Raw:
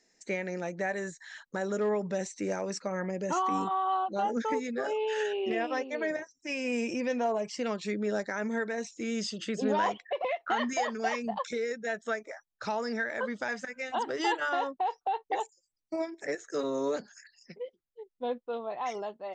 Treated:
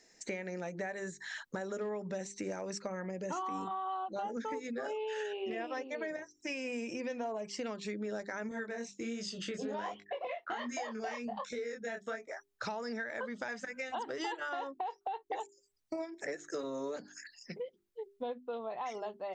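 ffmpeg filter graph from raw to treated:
-filter_complex "[0:a]asettb=1/sr,asplit=3[a][b][c];[a]atrim=end=8.494[d];[b]atrim=start=8.49:end=12.32,asetpts=PTS-STARTPTS,afade=t=in:d=0.004:c=qsin,afade=t=out:st=3.826:d=0.004:c=qsin,agate=range=-33dB:threshold=-49dB:ratio=3:release=100:detection=peak,flanger=delay=20:depth=5.8:speed=1.3[e];[c]atrim=start=12.316[f];[d][e]acrossfade=d=0.004:c1=hsin:c2=qsin[g];[g][f]acrossfade=d=0.004:c1=qsin:c2=hsin,equalizer=f=67:w=1.3:g=5,bandreject=f=50:t=h:w=6,bandreject=f=100:t=h:w=6,bandreject=f=150:t=h:w=6,bandreject=f=200:t=h:w=6,bandreject=f=250:t=h:w=6,bandreject=f=300:t=h:w=6,bandreject=f=350:t=h:w=6,bandreject=f=400:t=h:w=6,acompressor=threshold=-43dB:ratio=4,volume=5dB"

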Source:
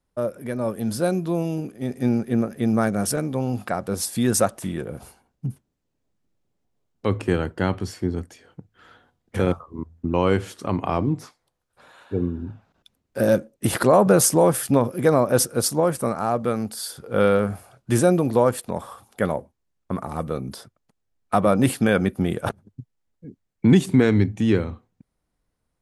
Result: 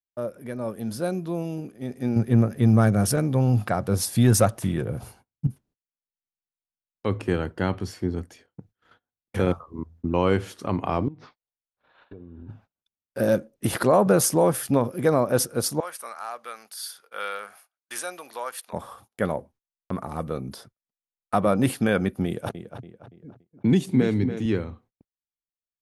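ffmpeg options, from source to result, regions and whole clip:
-filter_complex "[0:a]asettb=1/sr,asplit=3[a][b][c];[a]atrim=end=2.164[d];[b]atrim=start=2.16:end=5.47,asetpts=PTS-STARTPTS,afade=t=in:d=0.004:c=qsin,afade=t=out:st=3.306:d=0.004:c=qsin,equalizer=f=110:t=o:w=0.69:g=11,acontrast=25[e];[c]atrim=start=5.466[f];[d][e]acrossfade=d=0.004:c1=hsin:c2=qsin[g];[g][f]acrossfade=d=0.004:c1=qsin:c2=hsin,asettb=1/sr,asplit=3[h][i][j];[h]atrim=end=11.084[k];[i]atrim=start=11.08:end=12.49,asetpts=PTS-STARTPTS,afade=t=in:d=0.004:c=qsin,afade=t=out:st=1.406:d=0.004:c=qsin,lowpass=f=4k:w=0.5412,lowpass=f=4k:w=1.3066,acompressor=threshold=-35dB:ratio=16:attack=3.2:release=140:knee=1:detection=peak,asubboost=boost=3:cutoff=77[l];[j]atrim=start=12.486[m];[k][l]acrossfade=d=0.004:c1=hsin:c2=qsin[n];[n][m]acrossfade=d=0.004:c1=qsin:c2=hsin,asettb=1/sr,asplit=3[o][p][q];[o]atrim=end=15.804[r];[p]atrim=start=15.8:end=18.73,asetpts=PTS-STARTPTS,afade=t=in:d=0.004:c=qsin,afade=t=out:st=2.926:d=0.004:c=qsin,highpass=1.3k,bandreject=f=7.5k:w=14[s];[q]atrim=start=18.726[t];[r][s]acrossfade=d=0.004:c1=hsin:c2=qsin[u];[u][t]acrossfade=d=0.004:c1=qsin:c2=hsin,asettb=1/sr,asplit=3[v][w][x];[v]atrim=end=22.264[y];[w]atrim=start=22.26:end=24.46,asetpts=PTS-STARTPTS,afade=t=in:d=0.004:c=qsin,afade=t=out:st=2.196:d=0.004:c=qsin,highpass=83,equalizer=f=1.3k:t=o:w=1.2:g=-5.5,asplit=2[z][aa];[aa]adelay=285,lowpass=f=3.4k:p=1,volume=-9dB,asplit=2[ab][ac];[ac]adelay=285,lowpass=f=3.4k:p=1,volume=0.45,asplit=2[ad][ae];[ae]adelay=285,lowpass=f=3.4k:p=1,volume=0.45,asplit=2[af][ag];[ag]adelay=285,lowpass=f=3.4k:p=1,volume=0.45,asplit=2[ah][ai];[ai]adelay=285,lowpass=f=3.4k:p=1,volume=0.45[aj];[z][ab][ad][af][ah][aj]amix=inputs=6:normalize=0,atrim=end_sample=97020[ak];[x]atrim=start=24.456[al];[y][ak]acrossfade=d=0.004:c1=hsin:c2=qsin[am];[am][al]acrossfade=d=0.004:c1=qsin:c2=hsin,agate=range=-29dB:threshold=-49dB:ratio=16:detection=peak,equalizer=f=7.8k:w=3.8:g=-4.5,dynaudnorm=f=510:g=11:m=4.5dB,volume=-5dB"

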